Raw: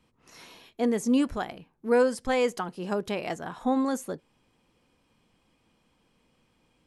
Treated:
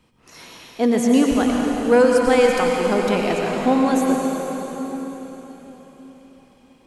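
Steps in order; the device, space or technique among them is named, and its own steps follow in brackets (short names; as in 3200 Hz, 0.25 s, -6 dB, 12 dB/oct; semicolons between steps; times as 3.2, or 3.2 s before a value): cathedral (reverb RT60 4.3 s, pre-delay 88 ms, DRR -0.5 dB); gain +7 dB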